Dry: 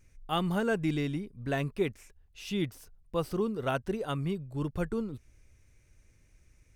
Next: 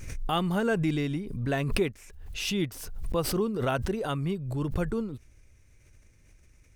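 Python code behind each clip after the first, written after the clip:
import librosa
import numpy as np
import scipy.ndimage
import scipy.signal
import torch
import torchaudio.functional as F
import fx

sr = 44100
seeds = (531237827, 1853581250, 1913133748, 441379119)

y = fx.pre_swell(x, sr, db_per_s=44.0)
y = F.gain(torch.from_numpy(y), 2.0).numpy()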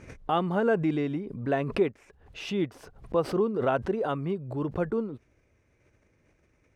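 y = fx.bandpass_q(x, sr, hz=580.0, q=0.59)
y = F.gain(torch.from_numpy(y), 4.0).numpy()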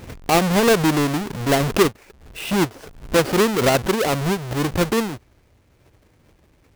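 y = fx.halfwave_hold(x, sr)
y = F.gain(torch.from_numpy(y), 5.0).numpy()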